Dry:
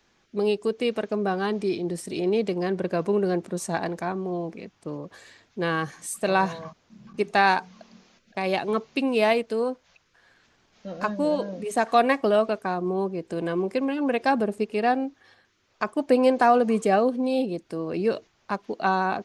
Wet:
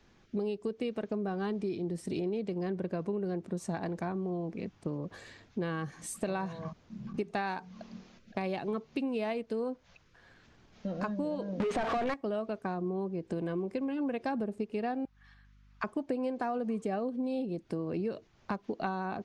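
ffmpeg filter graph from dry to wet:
-filter_complex "[0:a]asettb=1/sr,asplit=3[s0][s1][s2];[s0]atrim=end=11.604[s3];[s1]atrim=start=11.6:end=12.14,asetpts=PTS-STARTPTS,afade=t=in:d=0.004:c=qsin,afade=t=out:st=0.536:d=0.004:c=qsin,aeval=exprs='val(0)+0.5*0.0891*sgn(val(0))':c=same,lowpass=4800,asplit=2[s4][s5];[s5]highpass=f=720:p=1,volume=12.6,asoftclip=type=tanh:threshold=0.531[s6];[s4][s6]amix=inputs=2:normalize=0,lowpass=f=2800:p=1,volume=0.501[s7];[s2]atrim=start=12.136[s8];[s3][s7]acrossfade=d=0.004:c1=hsin:c2=qsin[s9];[s9][s8]acrossfade=d=0.004:c1=qsin:c2=hsin,asettb=1/sr,asplit=3[s10][s11][s12];[s10]atrim=end=15.054[s13];[s11]atrim=start=15.05:end=15.84,asetpts=PTS-STARTPTS,afade=t=in:d=0.004:c=qsin,afade=t=out:st=0.786:d=0.004:c=qsin,highpass=f=1100:w=0.5412,highpass=f=1100:w=1.3066,highshelf=f=2300:g=-8,aeval=exprs='val(0)+0.000447*(sin(2*PI*50*n/s)+sin(2*PI*2*50*n/s)/2+sin(2*PI*3*50*n/s)/3+sin(2*PI*4*50*n/s)/4+sin(2*PI*5*50*n/s)/5)':c=same[s14];[s12]atrim=start=15.836[s15];[s13][s14]acrossfade=d=0.004:c1=hsin:c2=qsin[s16];[s16][s15]acrossfade=d=0.004:c1=qsin:c2=hsin,lowshelf=f=300:g=10.5,acompressor=threshold=0.0316:ratio=6,highshelf=f=8300:g=-8.5,volume=0.841"

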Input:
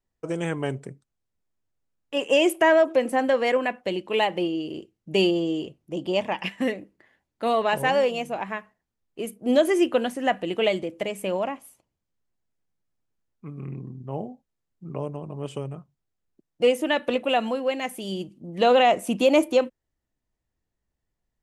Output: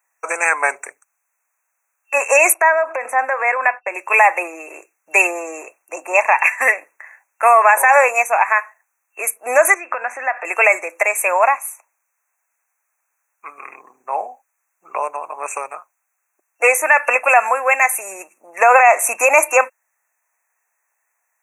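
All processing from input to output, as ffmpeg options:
-filter_complex "[0:a]asettb=1/sr,asplit=3[s0][s1][s2];[s0]atrim=end=2.544[s3];[s1]atrim=start=2.54:end=3.95,asetpts=PTS-STARTPTS,afade=t=in:d=0.004:c=qsin,afade=t=out:st=1.406:d=0.004:c=qsin,agate=range=0.0224:threshold=0.00891:ratio=3:release=100:detection=peak,lowpass=f=1800:p=1,acompressor=threshold=0.0501:ratio=5:attack=3.2:release=140:knee=1:detection=peak[s4];[s2]atrim=start=3.946[s5];[s3][s4]acrossfade=d=0.004:c1=hsin:c2=qsin[s6];[s6][s5]acrossfade=d=0.004:c1=qsin:c2=hsin,asettb=1/sr,asplit=3[s7][s8][s9];[s7]atrim=end=9.744[s10];[s8]atrim=start=9.74:end=10.45,asetpts=PTS-STARTPTS,afade=t=in:d=0.004:c=qsin,afade=t=out:st=0.706:d=0.004:c=qsin,highpass=120,lowpass=3100,acompressor=threshold=0.0355:ratio=12:attack=3.2:release=140:knee=1:detection=peak[s11];[s9]atrim=start=10.446[s12];[s10][s11]acrossfade=d=0.004:c1=hsin:c2=qsin[s13];[s13][s12]acrossfade=d=0.004:c1=qsin:c2=hsin,afftfilt=real='re*(1-between(b*sr/4096,2700,5800))':imag='im*(1-between(b*sr/4096,2700,5800))':win_size=4096:overlap=0.75,highpass=f=840:w=0.5412,highpass=f=840:w=1.3066,alimiter=level_in=12.6:limit=0.891:release=50:level=0:latency=1,volume=0.891"

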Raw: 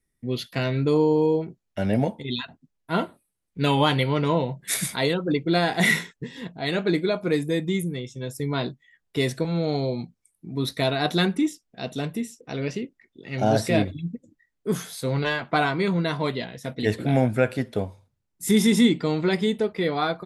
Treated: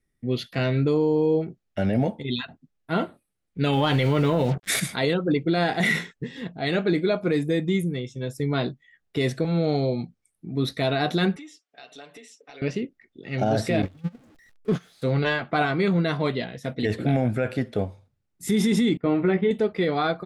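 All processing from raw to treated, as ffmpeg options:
-filter_complex "[0:a]asettb=1/sr,asplit=3[s0][s1][s2];[s0]atrim=end=3.734[s3];[s1]atrim=start=3.73:end=4.8,asetpts=PTS-STARTPTS,afade=t=in:d=0.004:c=qsin,afade=t=out:st=1.066:d=0.004:c=qsin,acrusher=bits=6:mix=0:aa=0.5,acontrast=84[s4];[s2]atrim=start=4.796[s5];[s3][s4]acrossfade=d=0.004:c1=hsin:c2=qsin[s6];[s6][s5]acrossfade=d=0.004:c1=qsin:c2=hsin,asettb=1/sr,asplit=3[s7][s8][s9];[s7]atrim=end=11.364[s10];[s8]atrim=start=11.36:end=12.62,asetpts=PTS-STARTPTS,afade=t=in:d=0.004:c=qsin,afade=t=out:st=1.256:d=0.004:c=qsin,highpass=680,lowpass=7300,acompressor=threshold=0.00708:ratio=10:attack=3.2:release=140:knee=1:detection=peak,aecho=1:1:7:0.79,atrim=end_sample=55566[s11];[s9]atrim=start=12.616[s12];[s10][s11]acrossfade=d=0.004:c1=hsin:c2=qsin[s13];[s13][s12]acrossfade=d=0.004:c1=qsin:c2=hsin,asettb=1/sr,asplit=3[s14][s15][s16];[s14]atrim=end=13.824[s17];[s15]atrim=start=13.82:end=15.02,asetpts=PTS-STARTPTS,afade=t=in:d=0.004:c=qsin,afade=t=out:st=1.196:d=0.004:c=qsin,aeval=exprs='val(0)+0.5*0.0316*sgn(val(0))':c=same,agate=range=0.0891:threshold=0.0501:ratio=16:release=100:detection=peak,acrossover=split=5200[s18][s19];[s19]acompressor=threshold=0.00141:ratio=4:attack=1:release=60[s20];[s18][s20]amix=inputs=2:normalize=0[s21];[s16]atrim=start=15.016[s22];[s17][s21]acrossfade=d=0.004:c1=hsin:c2=qsin[s23];[s23][s22]acrossfade=d=0.004:c1=qsin:c2=hsin,asettb=1/sr,asplit=3[s24][s25][s26];[s24]atrim=end=18.974[s27];[s25]atrim=start=18.97:end=19.51,asetpts=PTS-STARTPTS,afade=t=in:d=0.004:c=qsin,afade=t=out:st=0.536:d=0.004:c=qsin,agate=range=0.0224:threshold=0.0447:ratio=3:release=100:detection=peak,lowpass=f=2600:w=0.5412,lowpass=f=2600:w=1.3066,asplit=2[s28][s29];[s29]adelay=16,volume=0.531[s30];[s28][s30]amix=inputs=2:normalize=0,atrim=end_sample=23814[s31];[s26]atrim=start=19.506[s32];[s27][s31]acrossfade=d=0.004:c1=hsin:c2=qsin[s33];[s33][s32]acrossfade=d=0.004:c1=qsin:c2=hsin,lowpass=f=3900:p=1,bandreject=f=970:w=8.1,alimiter=limit=0.168:level=0:latency=1:release=20,volume=1.26"

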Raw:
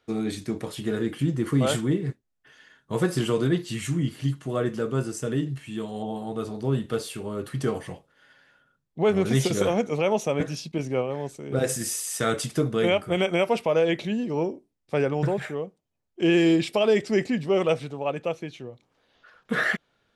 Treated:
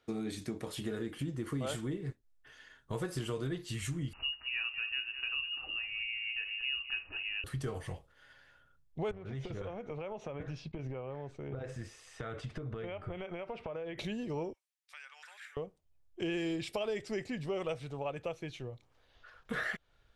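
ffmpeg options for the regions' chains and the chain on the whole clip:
-filter_complex "[0:a]asettb=1/sr,asplit=3[s0][s1][s2];[s0]atrim=end=4.134[s3];[s1]atrim=start=4.13:end=7.44,asetpts=PTS-STARTPTS,afade=t=in:d=0.004:c=qsin,afade=t=out:st=3.306:d=0.004:c=qsin,lowpass=f=2600:t=q:w=0.5098,lowpass=f=2600:t=q:w=0.6013,lowpass=f=2600:t=q:w=0.9,lowpass=f=2600:t=q:w=2.563,afreqshift=-3000,aecho=1:1:203:0.211,atrim=end_sample=145971[s4];[s2]atrim=start=7.436[s5];[s3][s4]acrossfade=d=0.004:c1=hsin:c2=qsin[s6];[s6][s5]acrossfade=d=0.004:c1=qsin:c2=hsin,asettb=1/sr,asplit=3[s7][s8][s9];[s7]atrim=end=9.114[s10];[s8]atrim=start=9.11:end=13.98,asetpts=PTS-STARTPTS,afade=t=in:d=0.004:c=qsin,afade=t=out:st=4.866:d=0.004:c=qsin,acompressor=threshold=0.0282:ratio=12:attack=3.2:release=140:knee=1:detection=peak,lowpass=2400[s11];[s9]atrim=start=13.976[s12];[s10][s11]acrossfade=d=0.004:c1=hsin:c2=qsin[s13];[s13][s12]acrossfade=d=0.004:c1=qsin:c2=hsin,asettb=1/sr,asplit=3[s14][s15][s16];[s14]atrim=end=14.534[s17];[s15]atrim=start=14.53:end=15.57,asetpts=PTS-STARTPTS,afade=t=in:d=0.004:c=qsin,afade=t=out:st=1.036:d=0.004:c=qsin,highpass=f=1400:w=0.5412,highpass=f=1400:w=1.3066,acompressor=threshold=0.00282:ratio=2:attack=3.2:release=140:knee=1:detection=peak[s18];[s16]atrim=start=15.566[s19];[s17][s18]acrossfade=d=0.004:c1=hsin:c2=qsin[s20];[s20][s19]acrossfade=d=0.004:c1=qsin:c2=hsin,asubboost=boost=10:cutoff=64,acompressor=threshold=0.0224:ratio=3,volume=0.708"

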